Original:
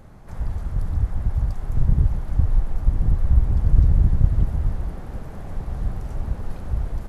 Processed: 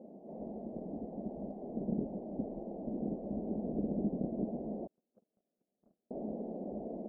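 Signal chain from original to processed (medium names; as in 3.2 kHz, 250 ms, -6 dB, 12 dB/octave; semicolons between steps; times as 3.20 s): elliptic band-pass 210–670 Hz, stop band 40 dB; 4.87–6.11 s: gate -37 dBFS, range -47 dB; trim +3 dB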